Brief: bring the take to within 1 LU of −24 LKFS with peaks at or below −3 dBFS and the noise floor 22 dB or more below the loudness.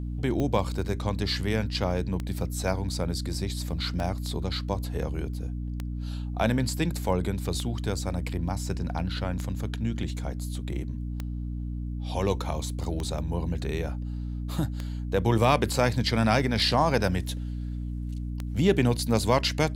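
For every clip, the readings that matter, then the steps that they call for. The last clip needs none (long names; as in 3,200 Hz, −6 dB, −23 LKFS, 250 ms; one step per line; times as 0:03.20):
number of clicks 11; mains hum 60 Hz; hum harmonics up to 300 Hz; level of the hum −30 dBFS; integrated loudness −28.5 LKFS; sample peak −8.0 dBFS; target loudness −24.0 LKFS
→ click removal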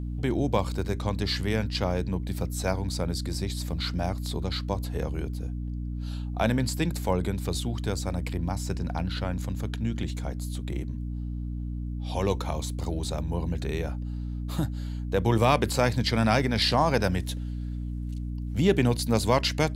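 number of clicks 0; mains hum 60 Hz; hum harmonics up to 300 Hz; level of the hum −30 dBFS
→ mains-hum notches 60/120/180/240/300 Hz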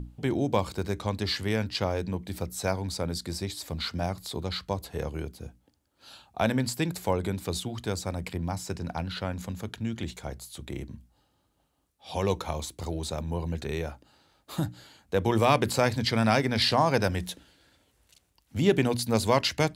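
mains hum none found; integrated loudness −29.0 LKFS; sample peak −9.0 dBFS; target loudness −24.0 LKFS
→ level +5 dB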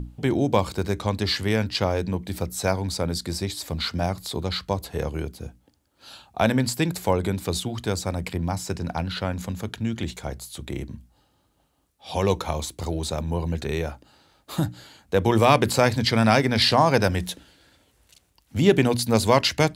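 integrated loudness −24.5 LKFS; sample peak −4.0 dBFS; background noise floor −66 dBFS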